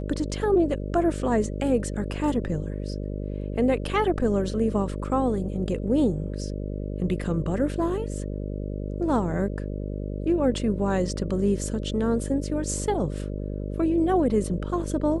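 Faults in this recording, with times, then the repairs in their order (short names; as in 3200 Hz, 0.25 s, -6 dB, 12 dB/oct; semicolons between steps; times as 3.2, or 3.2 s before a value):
buzz 50 Hz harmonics 12 -31 dBFS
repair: de-hum 50 Hz, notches 12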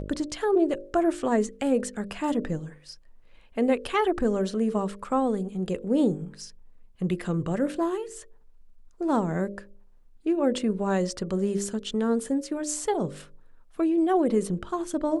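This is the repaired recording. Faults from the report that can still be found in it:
none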